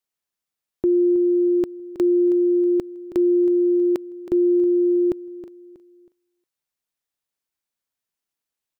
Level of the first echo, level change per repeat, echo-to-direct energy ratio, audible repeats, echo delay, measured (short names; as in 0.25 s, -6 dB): -14.0 dB, -10.0 dB, -13.5 dB, 3, 0.32 s